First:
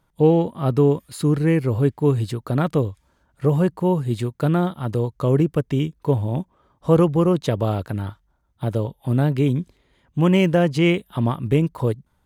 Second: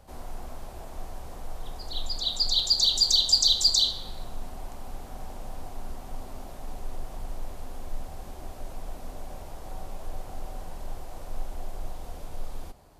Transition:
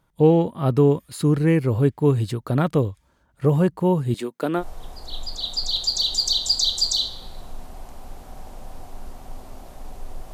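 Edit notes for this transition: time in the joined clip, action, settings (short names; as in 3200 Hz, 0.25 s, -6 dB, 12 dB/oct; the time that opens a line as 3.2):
first
4.14–4.64 HPF 240 Hz 24 dB/oct
4.61 switch to second from 1.44 s, crossfade 0.06 s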